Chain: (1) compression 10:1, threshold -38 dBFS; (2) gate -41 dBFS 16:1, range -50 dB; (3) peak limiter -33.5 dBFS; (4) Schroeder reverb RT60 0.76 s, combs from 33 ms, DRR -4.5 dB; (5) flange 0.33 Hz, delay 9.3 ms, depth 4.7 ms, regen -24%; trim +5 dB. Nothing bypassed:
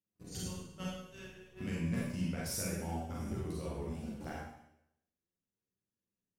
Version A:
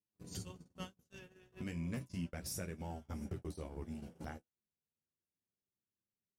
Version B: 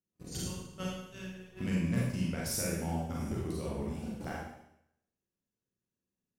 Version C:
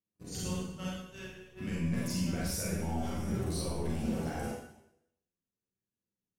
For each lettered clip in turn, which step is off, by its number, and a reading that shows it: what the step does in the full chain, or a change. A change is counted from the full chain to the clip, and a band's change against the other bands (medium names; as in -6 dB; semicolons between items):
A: 4, crest factor change -1.5 dB; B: 5, loudness change +3.5 LU; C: 1, mean gain reduction 7.0 dB